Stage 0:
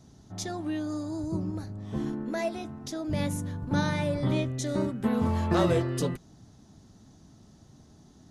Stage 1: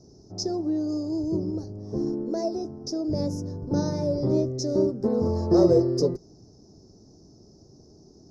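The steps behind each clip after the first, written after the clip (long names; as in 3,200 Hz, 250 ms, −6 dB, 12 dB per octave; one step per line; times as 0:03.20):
drawn EQ curve 250 Hz 0 dB, 390 Hz +12 dB, 3,200 Hz −29 dB, 5,200 Hz +12 dB, 8,300 Hz −16 dB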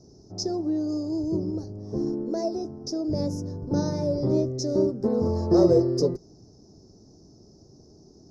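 no processing that can be heard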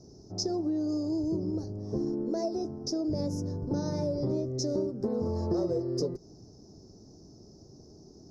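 downward compressor 6 to 1, threshold −27 dBFS, peak gain reduction 13 dB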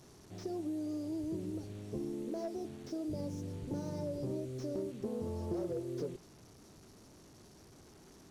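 linear delta modulator 64 kbit/s, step −44 dBFS
notch filter 5,100 Hz, Q 13
slew-rate limiting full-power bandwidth 30 Hz
level −8 dB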